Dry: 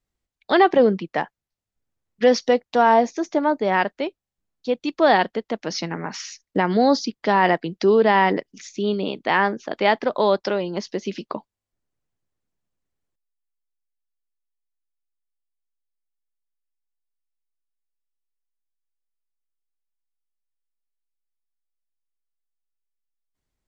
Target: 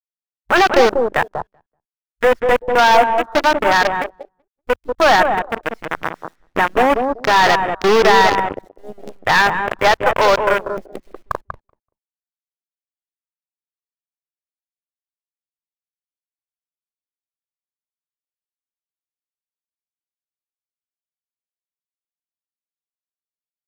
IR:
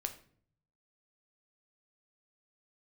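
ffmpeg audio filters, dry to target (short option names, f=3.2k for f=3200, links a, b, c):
-filter_complex "[0:a]firequalizer=gain_entry='entry(210,0);entry(1500,12);entry(3500,-11)':delay=0.05:min_phase=1,acrossover=split=430[a][b];[b]acontrast=60[c];[a][c]amix=inputs=2:normalize=0,asoftclip=type=hard:threshold=-6.5dB,acrusher=bits=3:dc=4:mix=0:aa=0.000001,aeval=exprs='0.596*(cos(1*acos(clip(val(0)/0.596,-1,1)))-cos(1*PI/2))+0.0841*(cos(8*acos(clip(val(0)/0.596,-1,1)))-cos(8*PI/2))':c=same,asplit=2[d][e];[e]adelay=191,lowpass=f=970:p=1,volume=-3.5dB,asplit=2[f][g];[g]adelay=191,lowpass=f=970:p=1,volume=0.2,asplit=2[h][i];[i]adelay=191,lowpass=f=970:p=1,volume=0.2[j];[f][h][j]amix=inputs=3:normalize=0[k];[d][k]amix=inputs=2:normalize=0,afwtdn=0.0891,volume=-3.5dB"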